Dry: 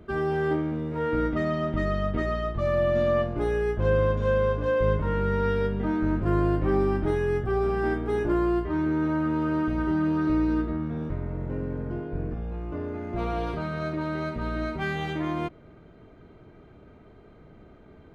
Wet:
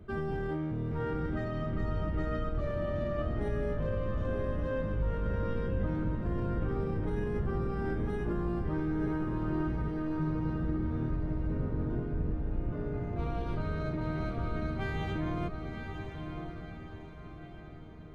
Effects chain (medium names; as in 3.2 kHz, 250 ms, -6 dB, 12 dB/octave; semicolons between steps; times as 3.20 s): octave divider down 1 oct, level +1 dB; bass shelf 73 Hz +7.5 dB; peak limiter -19 dBFS, peak gain reduction 11 dB; on a send: echo that smears into a reverb 968 ms, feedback 46%, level -6 dB; on the sum: trim -7 dB